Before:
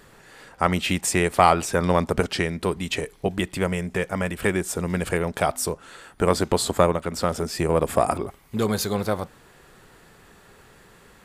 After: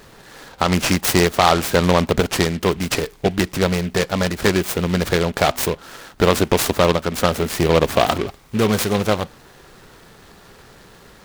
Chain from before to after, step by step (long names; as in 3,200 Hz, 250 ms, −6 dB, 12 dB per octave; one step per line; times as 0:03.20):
boost into a limiter +7 dB
short delay modulated by noise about 2,200 Hz, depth 0.072 ms
level −1 dB